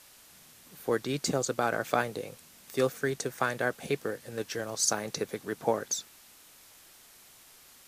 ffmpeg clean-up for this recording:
-af "afwtdn=0.002"

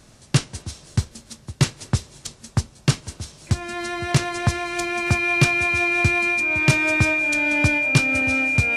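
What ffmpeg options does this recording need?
-af "bandreject=f=2.4k:w=30"

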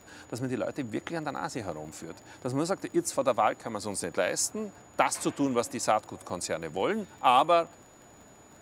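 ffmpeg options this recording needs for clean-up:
-af "adeclick=t=4,bandreject=f=6.9k:w=30"

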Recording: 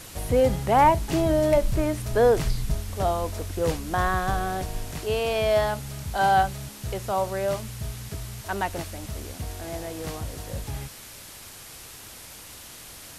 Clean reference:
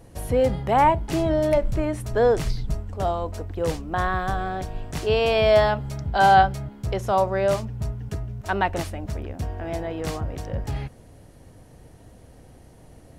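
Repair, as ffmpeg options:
-af "afwtdn=0.0079,asetnsamples=n=441:p=0,asendcmd='4.93 volume volume 5dB',volume=0dB"

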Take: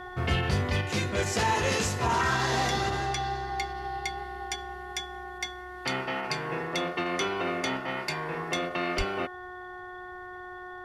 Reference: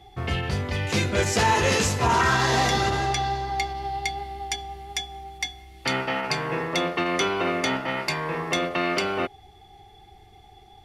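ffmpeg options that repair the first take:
-filter_complex "[0:a]bandreject=f=363.5:t=h:w=4,bandreject=f=727:t=h:w=4,bandreject=f=1.0905k:t=h:w=4,bandreject=f=1.454k:t=h:w=4,bandreject=f=1.8175k:t=h:w=4,asplit=3[a][b][c];[a]afade=t=out:st=8.97:d=0.02[d];[b]highpass=f=140:w=0.5412,highpass=f=140:w=1.3066,afade=t=in:st=8.97:d=0.02,afade=t=out:st=9.09:d=0.02[e];[c]afade=t=in:st=9.09:d=0.02[f];[d][e][f]amix=inputs=3:normalize=0,asetnsamples=n=441:p=0,asendcmd='0.81 volume volume 5.5dB',volume=0dB"

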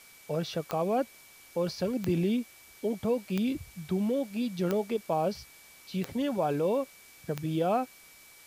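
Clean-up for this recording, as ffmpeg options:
-af "adeclick=t=4,bandreject=f=2.3k:w=30,afwtdn=0.002"

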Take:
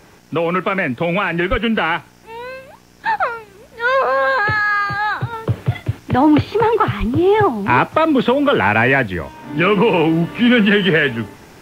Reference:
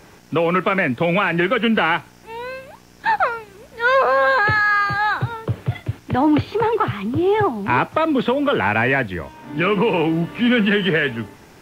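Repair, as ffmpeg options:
-filter_complex "[0:a]asplit=3[a][b][c];[a]afade=t=out:st=1.5:d=0.02[d];[b]highpass=f=140:w=0.5412,highpass=f=140:w=1.3066,afade=t=in:st=1.5:d=0.02,afade=t=out:st=1.62:d=0.02[e];[c]afade=t=in:st=1.62:d=0.02[f];[d][e][f]amix=inputs=3:normalize=0,asplit=3[g][h][i];[g]afade=t=out:st=6.99:d=0.02[j];[h]highpass=f=140:w=0.5412,highpass=f=140:w=1.3066,afade=t=in:st=6.99:d=0.02,afade=t=out:st=7.11:d=0.02[k];[i]afade=t=in:st=7.11:d=0.02[l];[j][k][l]amix=inputs=3:normalize=0,asetnsamples=n=441:p=0,asendcmd='5.33 volume volume -4dB',volume=0dB"

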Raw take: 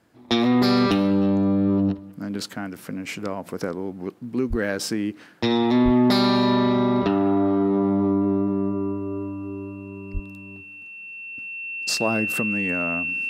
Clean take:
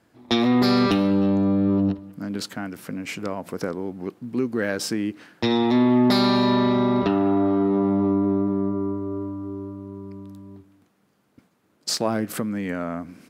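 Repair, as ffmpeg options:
-filter_complex "[0:a]bandreject=f=2.7k:w=30,asplit=3[a][b][c];[a]afade=t=out:st=4.49:d=0.02[d];[b]highpass=f=140:w=0.5412,highpass=f=140:w=1.3066,afade=t=in:st=4.49:d=0.02,afade=t=out:st=4.61:d=0.02[e];[c]afade=t=in:st=4.61:d=0.02[f];[d][e][f]amix=inputs=3:normalize=0,asplit=3[g][h][i];[g]afade=t=out:st=5.84:d=0.02[j];[h]highpass=f=140:w=0.5412,highpass=f=140:w=1.3066,afade=t=in:st=5.84:d=0.02,afade=t=out:st=5.96:d=0.02[k];[i]afade=t=in:st=5.96:d=0.02[l];[j][k][l]amix=inputs=3:normalize=0,asplit=3[m][n][o];[m]afade=t=out:st=10.13:d=0.02[p];[n]highpass=f=140:w=0.5412,highpass=f=140:w=1.3066,afade=t=in:st=10.13:d=0.02,afade=t=out:st=10.25:d=0.02[q];[o]afade=t=in:st=10.25:d=0.02[r];[p][q][r]amix=inputs=3:normalize=0"

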